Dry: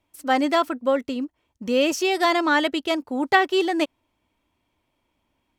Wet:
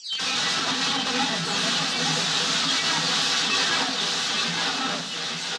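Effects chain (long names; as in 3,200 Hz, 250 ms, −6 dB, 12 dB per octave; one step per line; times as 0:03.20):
every frequency bin delayed by itself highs early, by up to 474 ms
in parallel at 0 dB: downward compressor 4 to 1, threshold −31 dBFS, peak gain reduction 13 dB
on the sum: wrap-around overflow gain 22 dB
delay with pitch and tempo change per echo 132 ms, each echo −4 semitones, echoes 2
loudspeaker in its box 200–6,300 Hz, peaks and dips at 330 Hz −10 dB, 560 Hz −10 dB, 960 Hz −6 dB, 2,200 Hz −7 dB, 3,800 Hz +5 dB
single-tap delay 861 ms −5 dB
on a send at −5 dB: convolution reverb RT60 0.55 s, pre-delay 3 ms
on the sum: level +1.5 dB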